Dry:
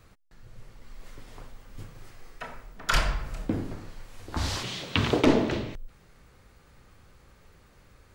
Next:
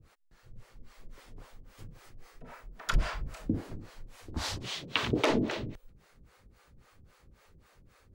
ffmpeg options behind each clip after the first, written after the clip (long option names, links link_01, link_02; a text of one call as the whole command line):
ffmpeg -i in.wav -filter_complex "[0:a]acrossover=split=420[link_01][link_02];[link_01]aeval=exprs='val(0)*(1-1/2+1/2*cos(2*PI*3.7*n/s))':channel_layout=same[link_03];[link_02]aeval=exprs='val(0)*(1-1/2-1/2*cos(2*PI*3.7*n/s))':channel_layout=same[link_04];[link_03][link_04]amix=inputs=2:normalize=0" out.wav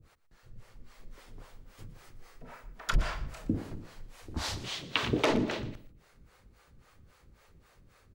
ffmpeg -i in.wav -af "aecho=1:1:119|238:0.158|0.0396" out.wav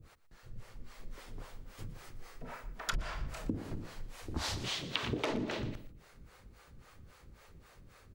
ffmpeg -i in.wav -af "acompressor=threshold=-36dB:ratio=4,volume=3dB" out.wav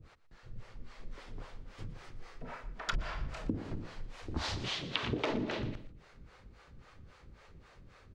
ffmpeg -i in.wav -af "lowpass=5100,volume=1dB" out.wav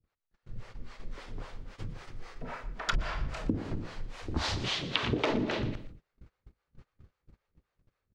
ffmpeg -i in.wav -af "agate=range=-29dB:threshold=-50dB:ratio=16:detection=peak,volume=4.5dB" out.wav